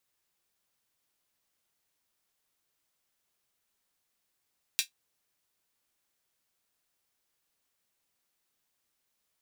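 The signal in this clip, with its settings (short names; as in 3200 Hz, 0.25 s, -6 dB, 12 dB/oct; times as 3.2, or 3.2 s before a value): closed hi-hat, high-pass 2900 Hz, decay 0.12 s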